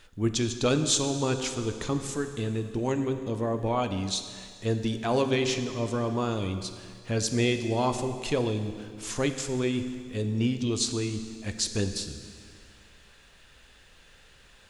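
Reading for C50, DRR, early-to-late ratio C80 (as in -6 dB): 9.0 dB, 7.5 dB, 10.0 dB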